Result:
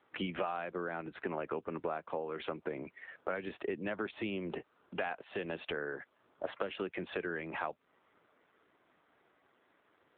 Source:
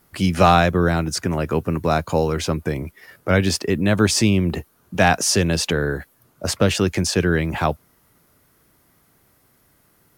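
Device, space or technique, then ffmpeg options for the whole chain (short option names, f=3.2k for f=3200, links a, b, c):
voicemail: -af "highpass=350,lowpass=3.2k,acompressor=threshold=-30dB:ratio=12,volume=-2.5dB" -ar 8000 -c:a libopencore_amrnb -b:a 7400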